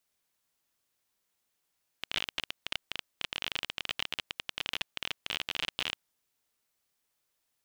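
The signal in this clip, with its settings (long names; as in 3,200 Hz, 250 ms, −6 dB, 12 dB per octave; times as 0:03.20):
Geiger counter clicks 28 per second −15 dBFS 4.01 s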